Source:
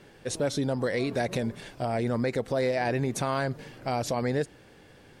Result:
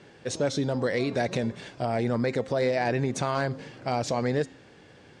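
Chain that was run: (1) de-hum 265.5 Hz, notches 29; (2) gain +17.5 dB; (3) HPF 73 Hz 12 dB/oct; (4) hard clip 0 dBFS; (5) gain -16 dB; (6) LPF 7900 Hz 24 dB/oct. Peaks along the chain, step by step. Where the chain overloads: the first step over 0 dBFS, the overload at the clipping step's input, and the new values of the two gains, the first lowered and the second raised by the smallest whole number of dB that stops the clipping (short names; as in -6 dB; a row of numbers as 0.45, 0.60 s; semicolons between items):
-15.0, +2.5, +3.5, 0.0, -16.0, -15.5 dBFS; step 2, 3.5 dB; step 2 +13.5 dB, step 5 -12 dB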